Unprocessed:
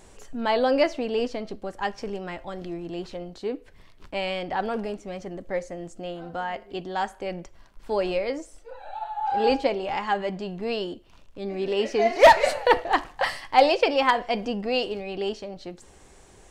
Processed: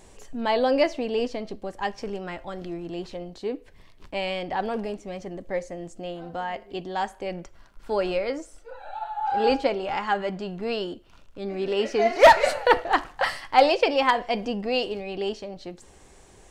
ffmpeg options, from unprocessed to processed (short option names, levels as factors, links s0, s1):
-af "asetnsamples=n=441:p=0,asendcmd='2.03 equalizer g 2;2.92 equalizer g -5;7.35 equalizer g 6.5;13.7 equalizer g -2',equalizer=f=1400:t=o:w=0.23:g=-6"